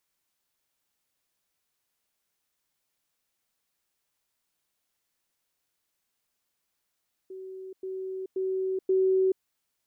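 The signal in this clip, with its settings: level ladder 378 Hz -38 dBFS, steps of 6 dB, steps 4, 0.43 s 0.10 s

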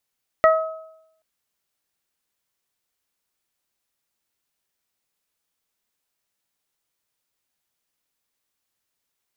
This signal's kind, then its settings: additive tone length 0.78 s, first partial 640 Hz, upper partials -3/-7.5 dB, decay 0.80 s, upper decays 0.67/0.24 s, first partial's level -10.5 dB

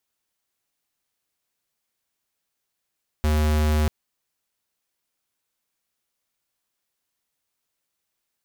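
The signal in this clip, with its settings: tone square 76.2 Hz -20 dBFS 0.64 s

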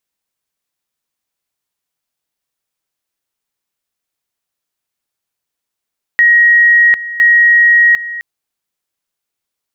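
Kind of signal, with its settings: two-level tone 1.89 kHz -4.5 dBFS, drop 15.5 dB, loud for 0.75 s, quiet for 0.26 s, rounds 2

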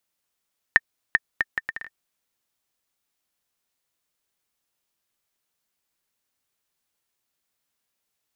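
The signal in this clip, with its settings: bouncing ball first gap 0.39 s, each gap 0.66, 1.81 kHz, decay 35 ms -1.5 dBFS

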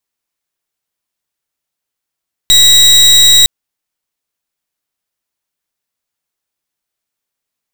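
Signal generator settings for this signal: pulse 3.83 kHz, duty 33% -5.5 dBFS 0.96 s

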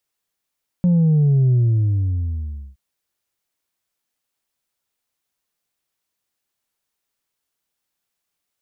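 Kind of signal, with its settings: sub drop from 180 Hz, over 1.92 s, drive 2 dB, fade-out 1.24 s, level -12.5 dB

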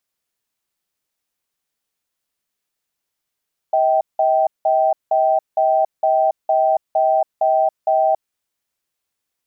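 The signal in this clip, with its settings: cadence 638 Hz, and 778 Hz, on 0.28 s, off 0.18 s, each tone -15.5 dBFS 4.60 s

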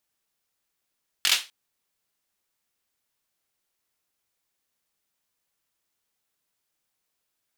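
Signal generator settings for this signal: hand clap length 0.25 s, apart 22 ms, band 3.2 kHz, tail 0.26 s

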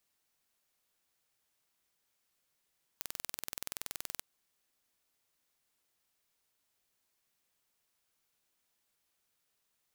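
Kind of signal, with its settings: pulse train 21.1 per s, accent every 0, -11 dBFS 1.20 s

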